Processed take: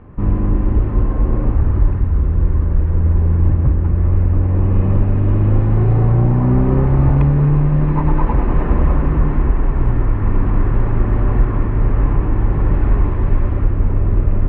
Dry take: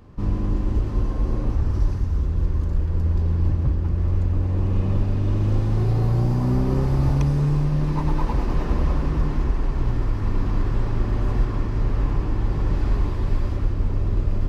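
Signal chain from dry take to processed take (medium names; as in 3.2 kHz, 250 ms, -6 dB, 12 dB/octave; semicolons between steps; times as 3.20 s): low-pass 2.3 kHz 24 dB/octave; trim +7 dB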